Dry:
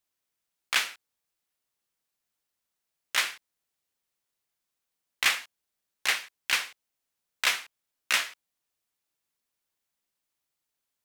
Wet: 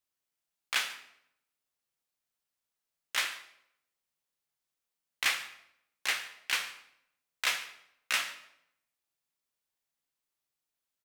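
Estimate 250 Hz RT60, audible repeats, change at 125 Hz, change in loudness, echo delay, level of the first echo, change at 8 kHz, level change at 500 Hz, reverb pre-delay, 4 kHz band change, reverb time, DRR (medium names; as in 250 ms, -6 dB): 0.85 s, 1, no reading, -4.5 dB, 142 ms, -20.0 dB, -4.5 dB, -4.0 dB, 7 ms, -4.0 dB, 0.75 s, 7.0 dB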